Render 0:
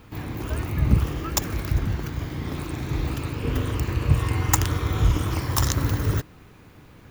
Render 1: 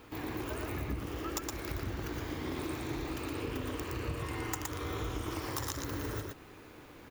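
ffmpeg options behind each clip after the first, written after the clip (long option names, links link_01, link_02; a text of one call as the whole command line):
ffmpeg -i in.wav -af "lowshelf=frequency=240:width_type=q:width=1.5:gain=-7.5,acompressor=threshold=-33dB:ratio=6,aecho=1:1:117:0.708,volume=-2.5dB" out.wav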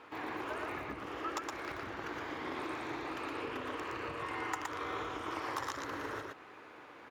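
ffmpeg -i in.wav -af "bandpass=frequency=1200:width_type=q:width=0.75:csg=0,volume=4.5dB" out.wav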